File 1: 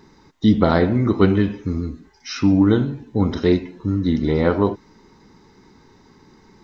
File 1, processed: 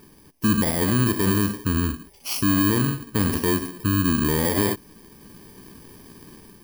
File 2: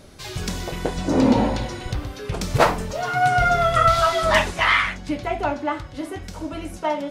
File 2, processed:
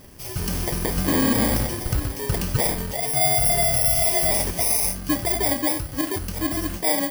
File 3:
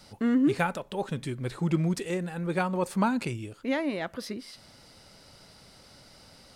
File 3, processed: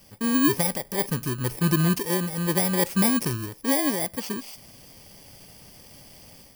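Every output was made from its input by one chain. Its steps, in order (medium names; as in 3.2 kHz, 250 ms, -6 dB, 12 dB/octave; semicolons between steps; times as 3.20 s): bit-reversed sample order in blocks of 32 samples; level rider gain up to 5.5 dB; peak limiter -12 dBFS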